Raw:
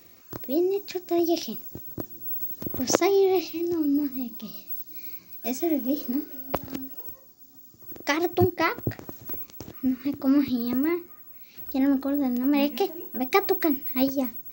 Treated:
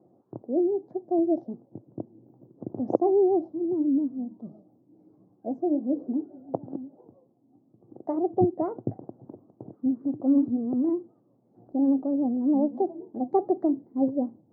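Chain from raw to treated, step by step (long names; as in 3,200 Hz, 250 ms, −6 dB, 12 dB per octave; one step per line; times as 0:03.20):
pitch vibrato 7.3 Hz 81 cents
elliptic band-pass filter 120–770 Hz, stop band 50 dB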